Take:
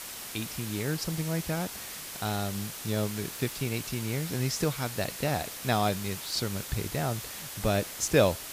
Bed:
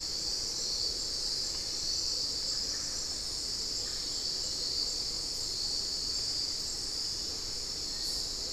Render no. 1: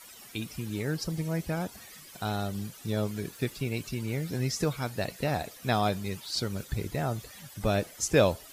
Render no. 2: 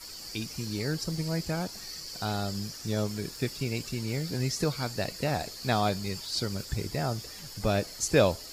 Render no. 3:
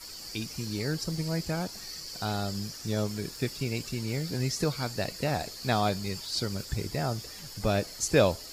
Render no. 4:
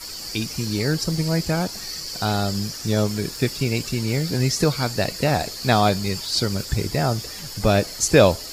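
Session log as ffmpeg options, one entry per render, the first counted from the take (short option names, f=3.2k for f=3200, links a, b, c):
-af "afftdn=nr=14:nf=-41"
-filter_complex "[1:a]volume=-9dB[a];[0:a][a]amix=inputs=2:normalize=0"
-af anull
-af "volume=9dB,alimiter=limit=-2dB:level=0:latency=1"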